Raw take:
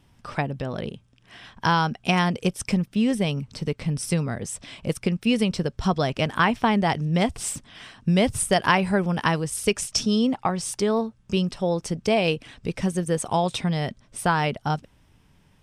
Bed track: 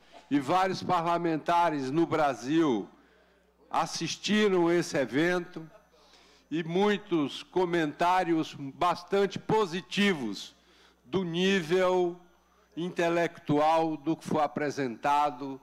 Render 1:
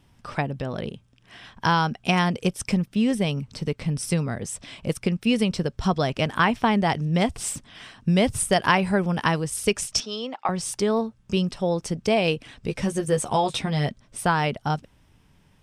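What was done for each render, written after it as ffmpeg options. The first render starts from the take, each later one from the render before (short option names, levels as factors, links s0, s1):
-filter_complex "[0:a]asettb=1/sr,asplit=3[s0][s1][s2];[s0]atrim=end=10.004[s3];[s1]atrim=start=10:end=10.49,asetpts=PTS-STARTPTS,afade=t=in:d=0.004:c=qsin,afade=t=out:st=0.486:d=0.004:c=qsin,highpass=560,lowpass=4600[s4];[s2]atrim=start=10.486[s5];[s3][s4]acrossfade=d=0.004:c1=hsin:c2=qsin[s6];[s6][s5]acrossfade=d=0.004:c1=qsin:c2=hsin,asettb=1/sr,asplit=3[s7][s8][s9];[s7]atrim=end=12.674[s10];[s8]atrim=start=12.67:end=13.89,asetpts=PTS-STARTPTS,afade=t=in:d=0.004:c=qsin,afade=t=out:st=1.216:d=0.004:c=qsin,asplit=2[s11][s12];[s12]adelay=14,volume=0.631[s13];[s11][s13]amix=inputs=2:normalize=0,atrim=end_sample=53802[s14];[s9]atrim=start=13.886[s15];[s10][s14]acrossfade=d=0.004:c1=hsin:c2=qsin[s16];[s16][s15]acrossfade=d=0.004:c1=qsin:c2=hsin"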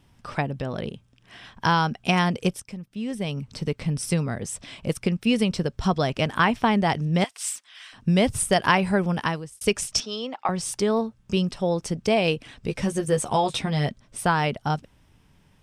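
-filter_complex "[0:a]asettb=1/sr,asplit=3[s0][s1][s2];[s0]atrim=end=7.244[s3];[s1]atrim=start=7.24:end=7.93,asetpts=PTS-STARTPTS,afade=t=in:d=0.004:c=qsin,afade=t=out:st=0.686:d=0.004:c=qsin,highpass=1400[s4];[s2]atrim=start=7.926[s5];[s3][s4]acrossfade=d=0.004:c1=hsin:c2=qsin[s6];[s6][s5]acrossfade=d=0.004:c1=qsin:c2=hsin,asplit=3[s7][s8][s9];[s7]atrim=end=2.6,asetpts=PTS-STARTPTS,afade=t=out:st=2.596:d=0.004:c=hsin:silence=0.177828[s10];[s8]atrim=start=2.6:end=9.61,asetpts=PTS-STARTPTS,afade=t=in:d=0.92:c=qua:silence=0.177828,afade=t=out:st=6.52:d=0.49[s11];[s9]atrim=start=9.61,asetpts=PTS-STARTPTS,afade=t=in:d=0.004:c=hsin[s12];[s10][s11][s12]concat=n=3:v=0:a=1"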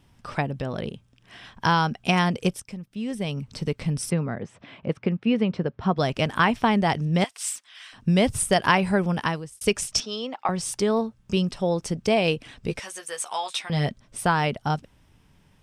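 -filter_complex "[0:a]asplit=3[s0][s1][s2];[s0]afade=t=out:st=4.09:d=0.02[s3];[s1]highpass=120,lowpass=2100,afade=t=in:st=4.09:d=0.02,afade=t=out:st=5.97:d=0.02[s4];[s2]afade=t=in:st=5.97:d=0.02[s5];[s3][s4][s5]amix=inputs=3:normalize=0,asettb=1/sr,asplit=3[s6][s7][s8];[s6]atrim=end=12.794[s9];[s7]atrim=start=12.79:end=13.7,asetpts=PTS-STARTPTS,afade=t=in:d=0.004:c=qsin,afade=t=out:st=0.906:d=0.004:c=qsin,highpass=1100[s10];[s8]atrim=start=13.696[s11];[s9][s10]acrossfade=d=0.004:c1=hsin:c2=qsin[s12];[s12][s11]acrossfade=d=0.004:c1=qsin:c2=hsin"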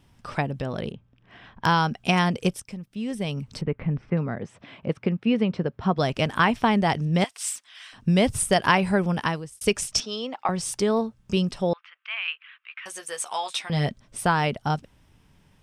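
-filter_complex "[0:a]asettb=1/sr,asplit=3[s0][s1][s2];[s0]atrim=end=0.924[s3];[s1]atrim=start=0.92:end=1.66,asetpts=PTS-STARTPTS,afade=t=in:d=0.004:c=qsin,afade=t=out:st=0.736:d=0.004:c=qsin,adynamicsmooth=sensitivity=1.5:basefreq=2600[s4];[s2]atrim=start=1.656[s5];[s3][s4]acrossfade=d=0.004:c1=hsin:c2=qsin[s6];[s6][s5]acrossfade=d=0.004:c1=qsin:c2=hsin,asettb=1/sr,asplit=3[s7][s8][s9];[s7]atrim=end=3.614[s10];[s8]atrim=start=3.61:end=4.17,asetpts=PTS-STARTPTS,afade=t=in:d=0.004:c=qsin,afade=t=out:st=0.556:d=0.004:c=qsin,lowpass=f=2200:w=0.5412,lowpass=f=2200:w=1.3066[s11];[s9]atrim=start=4.166[s12];[s10][s11]acrossfade=d=0.004:c1=hsin:c2=qsin[s13];[s13][s12]acrossfade=d=0.004:c1=qsin:c2=hsin,asettb=1/sr,asplit=3[s14][s15][s16];[s14]atrim=end=11.734[s17];[s15]atrim=start=11.73:end=12.86,asetpts=PTS-STARTPTS,afade=t=in:d=0.004:c=qsin,afade=t=out:st=1.126:d=0.004:c=qsin,asuperpass=centerf=1900:order=8:qfactor=0.99[s18];[s16]atrim=start=12.856[s19];[s17][s18]acrossfade=d=0.004:c1=hsin:c2=qsin[s20];[s20][s19]acrossfade=d=0.004:c1=qsin:c2=hsin"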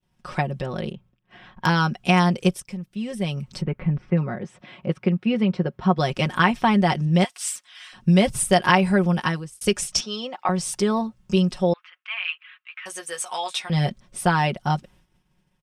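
-af "agate=range=0.0224:threshold=0.00355:ratio=3:detection=peak,aecho=1:1:5.5:0.65"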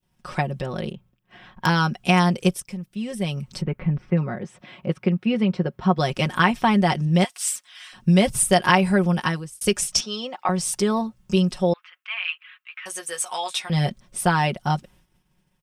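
-af "highshelf=f=9900:g=8.5"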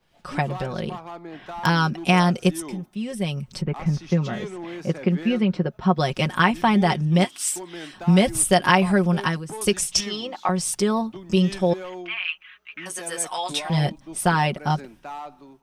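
-filter_complex "[1:a]volume=0.316[s0];[0:a][s0]amix=inputs=2:normalize=0"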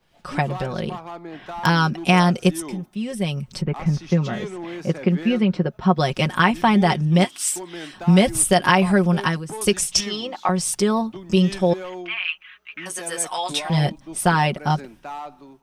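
-af "volume=1.26,alimiter=limit=0.708:level=0:latency=1"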